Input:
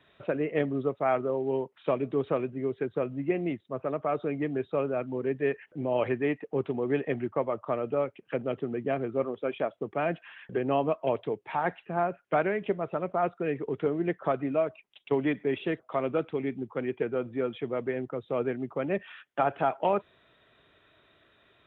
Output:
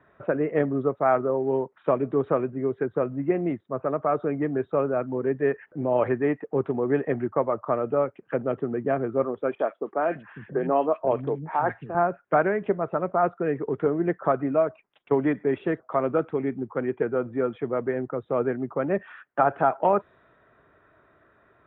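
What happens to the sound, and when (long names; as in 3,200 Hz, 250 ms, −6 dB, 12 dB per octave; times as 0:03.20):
0:09.55–0:11.95: three-band delay without the direct sound mids, highs, lows 40/550 ms, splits 220/1,800 Hz
whole clip: low-pass that shuts in the quiet parts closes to 2,400 Hz; high shelf with overshoot 2,100 Hz −10.5 dB, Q 1.5; level +4 dB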